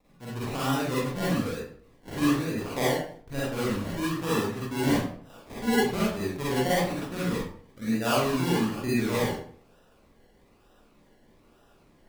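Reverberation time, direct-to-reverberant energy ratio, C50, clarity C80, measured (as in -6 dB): 0.55 s, -8.5 dB, -2.5 dB, 4.5 dB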